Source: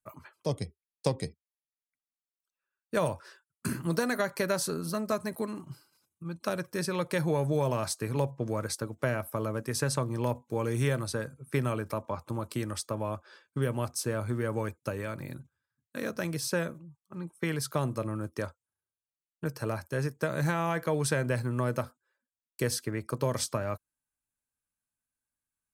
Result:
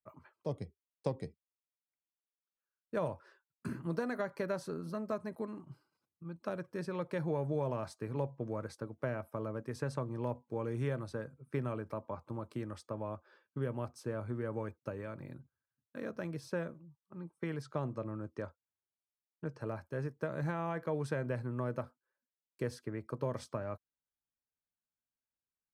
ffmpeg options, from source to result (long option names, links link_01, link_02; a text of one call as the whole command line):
ffmpeg -i in.wav -filter_complex "[0:a]asettb=1/sr,asplit=3[link_01][link_02][link_03];[link_01]atrim=end=17.624[link_04];[link_02]atrim=start=17.62:end=19.61,asetpts=PTS-STARTPTS,afade=type=in:duration=0.004:curve=qsin,afade=type=out:start_time=1.986:duration=0.004:curve=qsin,lowpass=frequency=8600:width=0.5412,lowpass=frequency=8600:width=1.3066[link_05];[link_03]atrim=start=19.606[link_06];[link_04][link_05]acrossfade=duration=0.004:curve1=hsin:curve2=qsin[link_07];[link_07][link_06]acrossfade=duration=0.004:curve1=qsin:curve2=hsin,lowpass=frequency=1100:poles=1,lowshelf=frequency=140:gain=-4.5,volume=-5dB" out.wav